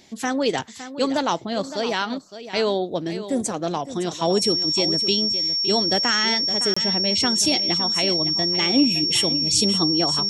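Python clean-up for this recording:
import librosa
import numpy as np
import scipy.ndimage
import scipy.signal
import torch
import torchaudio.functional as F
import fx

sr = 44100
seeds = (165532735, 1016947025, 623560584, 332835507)

y = fx.notch(x, sr, hz=5500.0, q=30.0)
y = fx.fix_interpolate(y, sr, at_s=(6.74,), length_ms=25.0)
y = fx.fix_echo_inverse(y, sr, delay_ms=562, level_db=-12.5)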